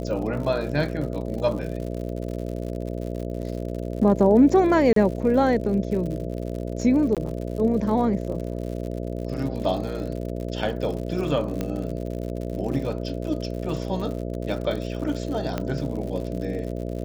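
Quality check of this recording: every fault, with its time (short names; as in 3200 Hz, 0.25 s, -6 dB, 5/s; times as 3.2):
buzz 60 Hz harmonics 11 -30 dBFS
crackle 83/s -32 dBFS
4.93–4.96 gap 33 ms
7.15–7.17 gap 17 ms
11.61 pop -14 dBFS
15.58 pop -13 dBFS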